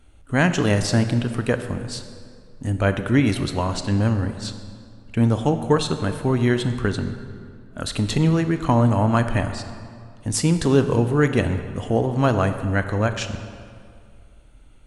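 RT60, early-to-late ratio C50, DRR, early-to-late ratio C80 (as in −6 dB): 2.2 s, 9.5 dB, 8.5 dB, 10.5 dB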